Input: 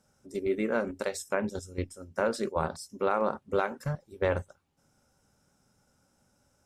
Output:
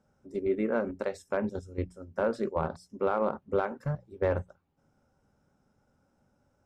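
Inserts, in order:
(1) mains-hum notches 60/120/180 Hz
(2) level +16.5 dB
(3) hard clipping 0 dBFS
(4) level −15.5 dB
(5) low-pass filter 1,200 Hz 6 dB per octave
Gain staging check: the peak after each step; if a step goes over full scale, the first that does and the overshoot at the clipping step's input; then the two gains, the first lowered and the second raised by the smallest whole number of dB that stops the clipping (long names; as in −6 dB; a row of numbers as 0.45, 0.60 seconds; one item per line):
−11.5, +5.0, 0.0, −15.5, −16.0 dBFS
step 2, 5.0 dB
step 2 +11.5 dB, step 4 −10.5 dB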